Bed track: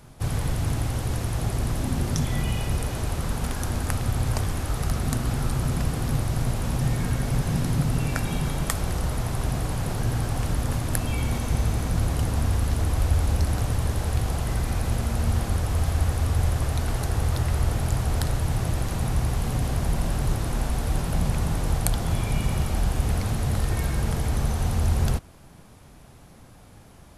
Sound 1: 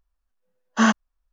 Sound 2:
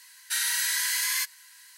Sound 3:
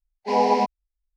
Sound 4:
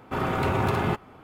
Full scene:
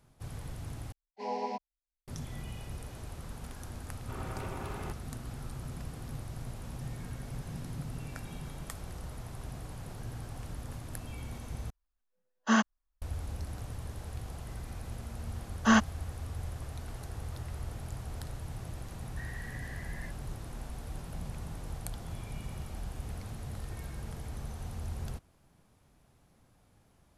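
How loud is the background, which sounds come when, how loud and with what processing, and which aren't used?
bed track −16 dB
0:00.92: overwrite with 3 −16 dB
0:03.97: mix in 4 −16.5 dB
0:11.70: overwrite with 1 −7.5 dB
0:14.88: mix in 1 −5 dB
0:18.86: mix in 2 −7 dB + resonant band-pass 1,800 Hz, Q 15

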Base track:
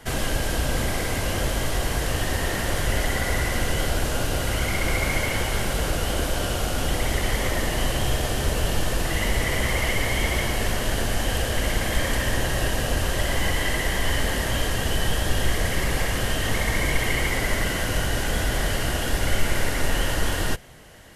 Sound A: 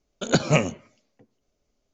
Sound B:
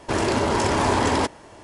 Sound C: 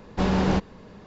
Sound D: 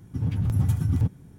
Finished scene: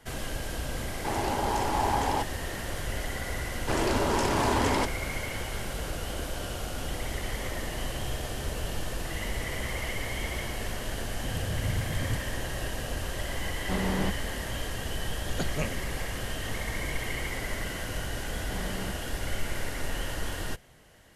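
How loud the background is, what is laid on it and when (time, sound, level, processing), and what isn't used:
base track −9.5 dB
0:00.96: mix in B −11 dB + parametric band 810 Hz +12.5 dB 0.3 octaves
0:03.59: mix in B −5.5 dB
0:11.09: mix in D −9.5 dB
0:13.51: mix in C −7.5 dB
0:15.06: mix in A −13.5 dB
0:18.32: mix in C −17 dB

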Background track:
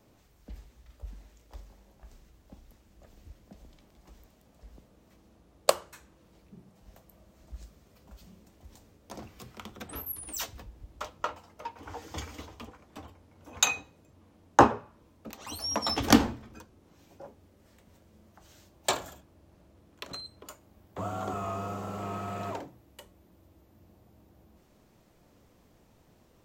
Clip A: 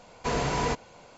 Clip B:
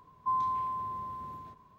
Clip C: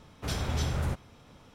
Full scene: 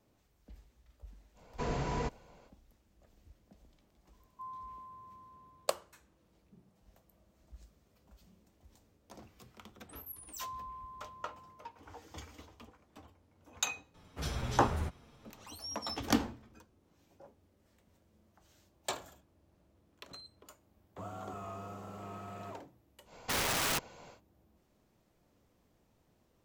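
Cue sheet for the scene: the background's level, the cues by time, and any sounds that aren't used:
background track −9.5 dB
0:01.34: mix in A −9.5 dB, fades 0.05 s + spectral tilt −1.5 dB per octave
0:04.13: mix in B −16 dB
0:10.14: mix in B −14 dB
0:13.94: mix in C −2.5 dB + barber-pole flanger 7.5 ms −1.3 Hz
0:23.04: mix in A −2.5 dB, fades 0.10 s + wrap-around overflow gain 24.5 dB

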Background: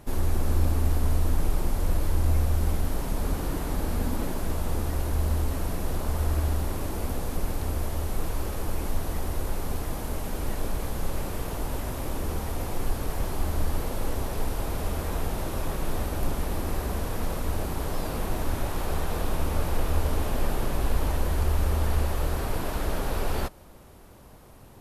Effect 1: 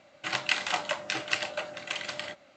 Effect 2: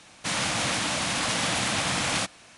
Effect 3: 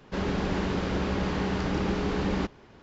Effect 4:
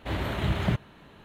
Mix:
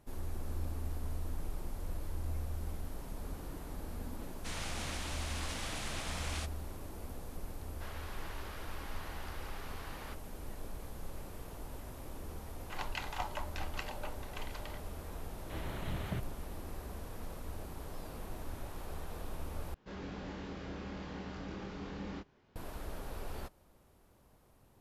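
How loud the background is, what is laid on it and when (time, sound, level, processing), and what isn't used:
background −15 dB
0:04.20: mix in 2 −15.5 dB
0:07.68: mix in 3 −12.5 dB + Chebyshev high-pass filter 1,000 Hz
0:12.46: mix in 1 −16 dB + parametric band 900 Hz +13 dB
0:15.44: mix in 4 −13 dB
0:19.74: overwrite with 3 −17 dB + double-tracking delay 25 ms −2.5 dB

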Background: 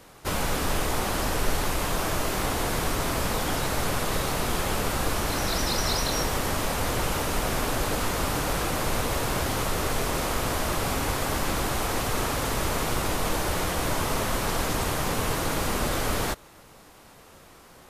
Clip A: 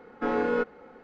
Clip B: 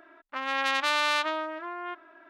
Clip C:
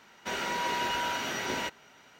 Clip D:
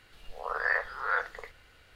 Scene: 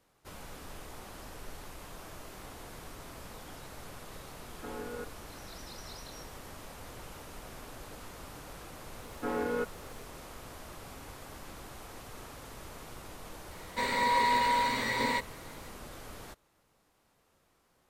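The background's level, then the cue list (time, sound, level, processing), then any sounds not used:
background −20 dB
0:04.41: mix in A −15.5 dB
0:09.01: mix in A −6.5 dB + bit reduction 10 bits
0:13.51: mix in C −1 dB + EQ curve with evenly spaced ripples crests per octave 0.98, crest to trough 15 dB
not used: B, D

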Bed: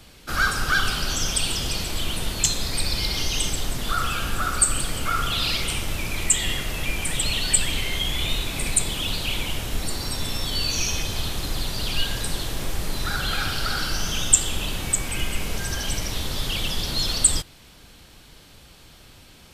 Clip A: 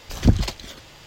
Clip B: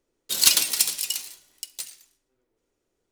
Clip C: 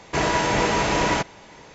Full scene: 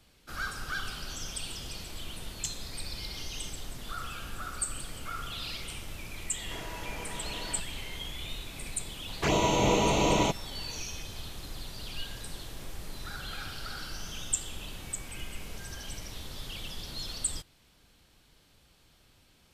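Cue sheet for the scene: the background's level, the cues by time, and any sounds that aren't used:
bed −14 dB
0:06.38: mix in C −7 dB + downward compressor 2.5 to 1, threshold −40 dBFS
0:09.09: mix in C −1.5 dB + flanger swept by the level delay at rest 8.9 ms, full sweep at −18.5 dBFS
not used: A, B

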